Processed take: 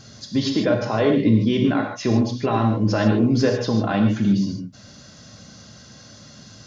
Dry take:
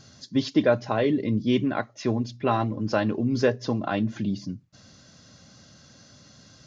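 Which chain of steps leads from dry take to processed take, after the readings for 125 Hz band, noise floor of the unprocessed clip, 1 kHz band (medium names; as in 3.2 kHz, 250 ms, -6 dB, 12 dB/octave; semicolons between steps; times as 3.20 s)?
+8.0 dB, -54 dBFS, +3.0 dB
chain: peak limiter -17 dBFS, peak gain reduction 8 dB; gated-style reverb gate 170 ms flat, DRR 2 dB; trim +5.5 dB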